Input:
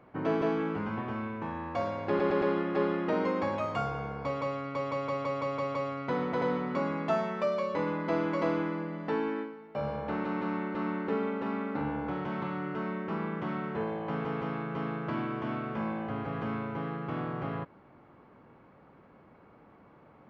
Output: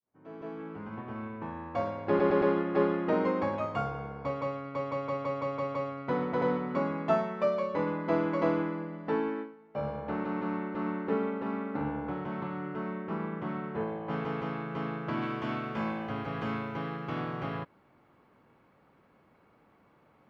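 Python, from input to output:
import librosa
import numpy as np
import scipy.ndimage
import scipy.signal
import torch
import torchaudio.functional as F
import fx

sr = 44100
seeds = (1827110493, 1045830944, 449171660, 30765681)

y = fx.fade_in_head(x, sr, length_s=1.36)
y = fx.high_shelf(y, sr, hz=2800.0, db=fx.steps((0.0, -7.5), (14.09, 3.5), (15.21, 11.5)))
y = fx.upward_expand(y, sr, threshold_db=-47.0, expansion=1.5)
y = F.gain(torch.from_numpy(y), 3.5).numpy()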